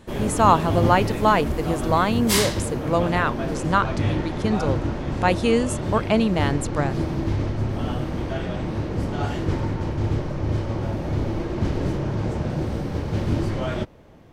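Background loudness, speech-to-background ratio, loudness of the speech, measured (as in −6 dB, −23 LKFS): −26.0 LKFS, 3.0 dB, −23.0 LKFS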